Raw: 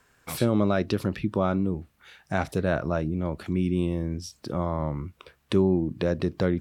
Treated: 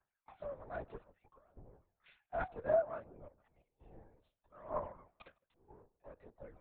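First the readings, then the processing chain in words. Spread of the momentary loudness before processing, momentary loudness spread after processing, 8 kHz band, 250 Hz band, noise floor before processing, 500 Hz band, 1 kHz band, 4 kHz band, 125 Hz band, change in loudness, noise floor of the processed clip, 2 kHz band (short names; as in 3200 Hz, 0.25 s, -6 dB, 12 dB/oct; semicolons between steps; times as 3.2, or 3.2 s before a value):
9 LU, 24 LU, under -35 dB, -32.0 dB, -66 dBFS, -12.5 dB, -11.5 dB, under -30 dB, -29.5 dB, -12.5 dB, under -85 dBFS, -16.5 dB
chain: octaver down 2 oct, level -5 dB; reverse; compressor 10:1, threshold -35 dBFS, peak gain reduction 19 dB; reverse; one-sided clip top -35 dBFS, bottom -29 dBFS; phaser 0.63 Hz, delay 2.9 ms, feedback 63%; step gate "xxxxxx.x.xxxx" 87 bpm -12 dB; ladder band-pass 860 Hz, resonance 35%; on a send: darkening echo 0.154 s, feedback 36%, low-pass 1200 Hz, level -17 dB; on the sum: LPC vocoder at 8 kHz whisper; three-band expander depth 100%; gain +7 dB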